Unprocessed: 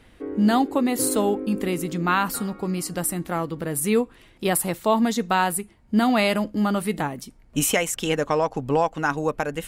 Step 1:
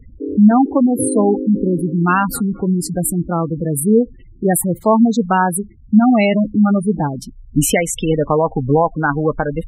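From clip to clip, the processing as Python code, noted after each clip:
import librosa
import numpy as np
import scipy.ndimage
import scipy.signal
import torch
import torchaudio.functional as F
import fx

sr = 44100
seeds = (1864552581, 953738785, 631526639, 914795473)

y = fx.low_shelf(x, sr, hz=170.0, db=10.0)
y = fx.spec_gate(y, sr, threshold_db=-15, keep='strong')
y = y * librosa.db_to_amplitude(6.0)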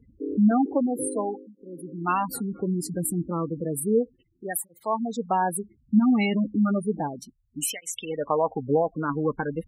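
y = fx.flanger_cancel(x, sr, hz=0.32, depth_ms=1.6)
y = y * librosa.db_to_amplitude(-6.5)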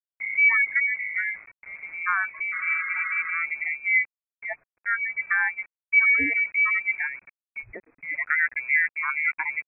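y = fx.spec_repair(x, sr, seeds[0], start_s=2.55, length_s=0.73, low_hz=240.0, high_hz=1400.0, source='after')
y = np.where(np.abs(y) >= 10.0 ** (-44.5 / 20.0), y, 0.0)
y = fx.freq_invert(y, sr, carrier_hz=2500)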